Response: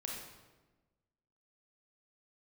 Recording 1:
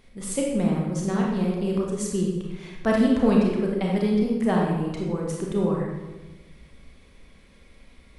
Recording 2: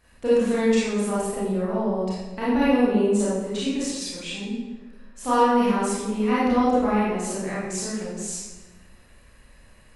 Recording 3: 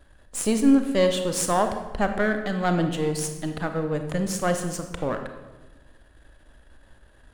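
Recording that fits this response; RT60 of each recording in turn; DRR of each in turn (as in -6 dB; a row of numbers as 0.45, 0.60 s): 1; 1.2, 1.2, 1.2 s; -2.0, -9.5, 6.0 dB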